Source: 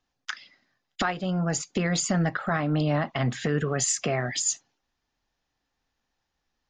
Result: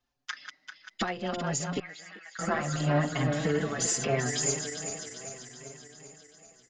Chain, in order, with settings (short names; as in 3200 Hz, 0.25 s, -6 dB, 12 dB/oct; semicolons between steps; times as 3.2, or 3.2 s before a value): regenerating reverse delay 0.196 s, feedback 77%, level -8 dB; 1.79–2.39 ladder band-pass 2400 Hz, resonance 35%; speakerphone echo 0.39 s, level -17 dB; endless flanger 5.3 ms +0.72 Hz